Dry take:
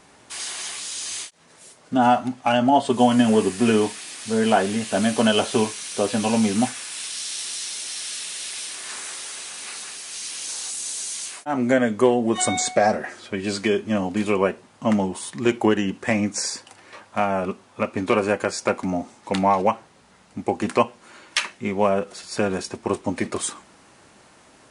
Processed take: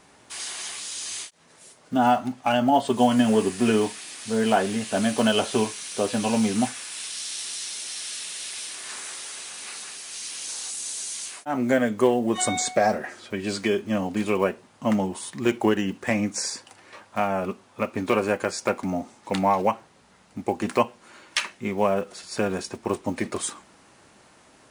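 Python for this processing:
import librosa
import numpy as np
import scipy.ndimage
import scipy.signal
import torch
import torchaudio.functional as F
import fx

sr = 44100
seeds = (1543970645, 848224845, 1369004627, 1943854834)

y = fx.block_float(x, sr, bits=7)
y = y * 10.0 ** (-2.5 / 20.0)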